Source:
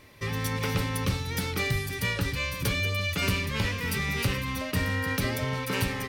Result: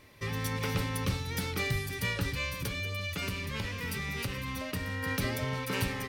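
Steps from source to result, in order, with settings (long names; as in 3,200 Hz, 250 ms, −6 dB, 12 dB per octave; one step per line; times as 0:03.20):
0:02.53–0:05.03: downward compressor, threshold −28 dBFS, peak gain reduction 7 dB
level −3.5 dB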